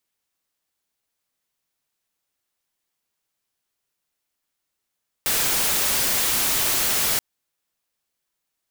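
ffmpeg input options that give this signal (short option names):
-f lavfi -i "anoisesrc=c=white:a=0.146:d=1.93:r=44100:seed=1"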